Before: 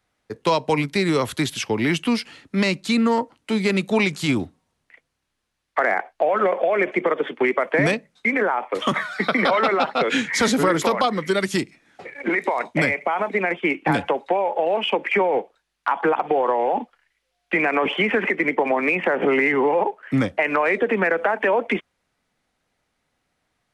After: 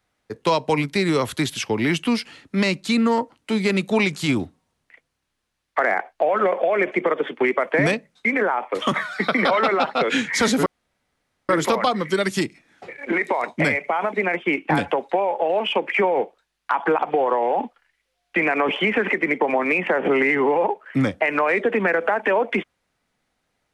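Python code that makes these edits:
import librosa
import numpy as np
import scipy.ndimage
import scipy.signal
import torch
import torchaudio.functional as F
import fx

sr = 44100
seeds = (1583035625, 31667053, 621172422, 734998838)

y = fx.edit(x, sr, fx.insert_room_tone(at_s=10.66, length_s=0.83), tone=tone)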